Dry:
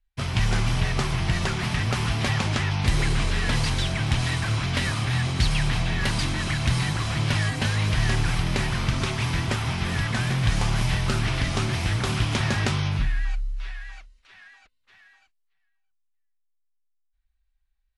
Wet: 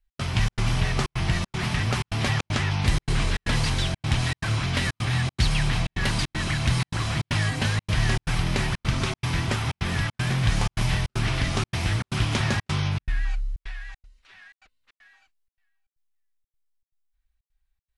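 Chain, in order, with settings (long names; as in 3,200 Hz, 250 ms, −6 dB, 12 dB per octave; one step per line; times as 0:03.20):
gate pattern "x.xxx.xxxx" 156 BPM −60 dB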